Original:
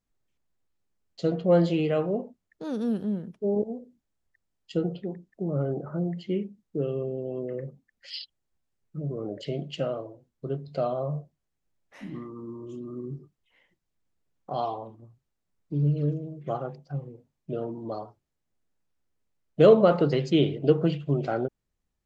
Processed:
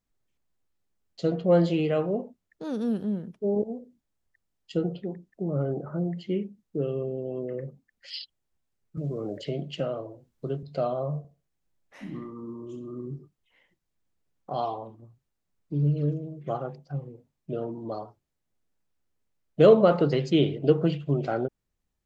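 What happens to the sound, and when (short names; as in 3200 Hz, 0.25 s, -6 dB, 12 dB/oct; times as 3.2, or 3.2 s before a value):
8.97–10.63 three-band squash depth 40%
11.18–13.07 feedback echo 64 ms, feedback 24%, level -11.5 dB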